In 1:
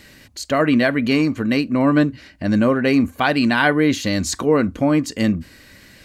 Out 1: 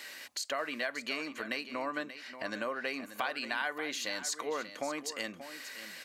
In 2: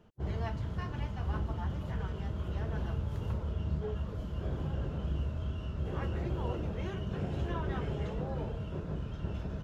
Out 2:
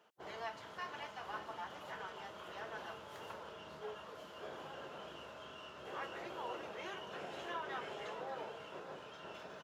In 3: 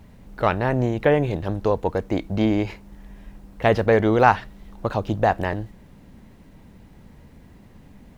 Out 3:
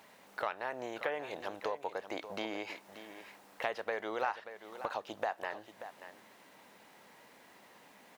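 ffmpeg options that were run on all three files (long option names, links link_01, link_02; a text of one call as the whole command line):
ffmpeg -i in.wav -af "highpass=690,acompressor=threshold=-39dB:ratio=3,aecho=1:1:583:0.251,volume=1.5dB" out.wav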